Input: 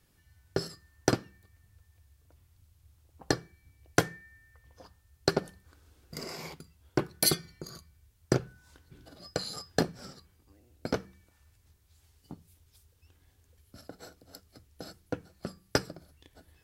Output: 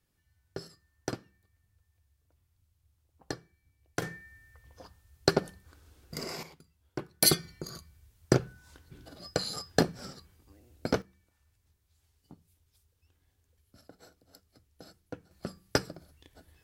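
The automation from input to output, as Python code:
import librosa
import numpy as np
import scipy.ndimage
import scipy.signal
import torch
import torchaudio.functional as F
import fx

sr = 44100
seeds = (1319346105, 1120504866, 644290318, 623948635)

y = fx.gain(x, sr, db=fx.steps((0.0, -9.5), (4.02, 2.0), (6.43, -9.0), (7.22, 2.5), (11.02, -7.5), (15.31, 0.0)))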